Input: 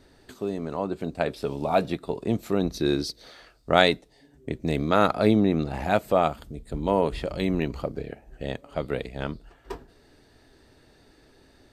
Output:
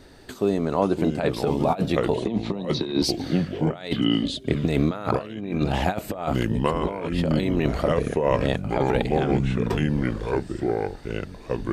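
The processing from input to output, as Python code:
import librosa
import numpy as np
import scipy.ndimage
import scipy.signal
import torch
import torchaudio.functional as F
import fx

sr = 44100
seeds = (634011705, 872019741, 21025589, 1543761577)

y = fx.cabinet(x, sr, low_hz=160.0, low_slope=24, high_hz=4500.0, hz=(190.0, 940.0, 1400.0, 3700.0), db=(7, 8, -9, 6), at=(2.18, 3.02))
y = fx.echo_pitch(y, sr, ms=455, semitones=-4, count=2, db_per_echo=-6.0)
y = fx.over_compress(y, sr, threshold_db=-26.0, ratio=-0.5)
y = y * librosa.db_to_amplitude(4.5)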